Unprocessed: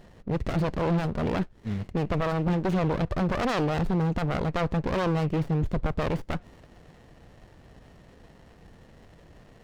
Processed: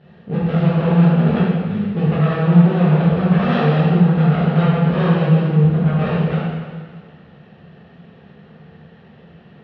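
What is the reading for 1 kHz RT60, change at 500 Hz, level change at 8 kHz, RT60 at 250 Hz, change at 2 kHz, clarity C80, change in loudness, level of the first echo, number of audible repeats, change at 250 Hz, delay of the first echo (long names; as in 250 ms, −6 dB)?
1.7 s, +8.0 dB, can't be measured, 1.6 s, +8.0 dB, 0.0 dB, +12.0 dB, no echo audible, no echo audible, +13.0 dB, no echo audible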